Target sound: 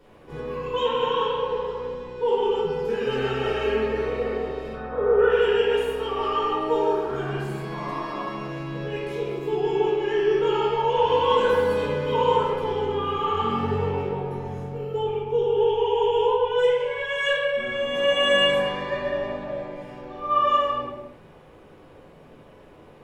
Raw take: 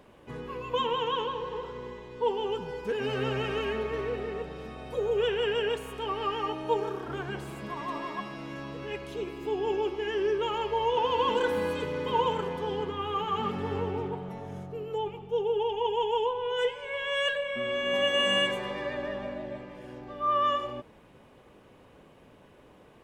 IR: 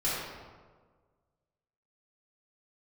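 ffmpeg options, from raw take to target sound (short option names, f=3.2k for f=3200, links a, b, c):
-filter_complex "[0:a]asettb=1/sr,asplit=3[a][b][c];[a]atrim=end=4.734[d];[b]atrim=start=4.73:end=5.3,asetpts=PTS-STARTPTS,afade=t=in:d=0.004:c=qsin,afade=t=out:st=0.566:d=0.004:c=qsin,lowpass=f=1.4k:t=q:w=3.9[e];[c]atrim=start=5.296[f];[d][e]acrossfade=d=0.004:c1=hsin:c2=qsin[g];[g][f]acrossfade=d=0.004:c1=qsin:c2=hsin[h];[1:a]atrim=start_sample=2205,afade=t=out:st=0.41:d=0.01,atrim=end_sample=18522[i];[h][i]afir=irnorm=-1:irlink=0,volume=-3.5dB"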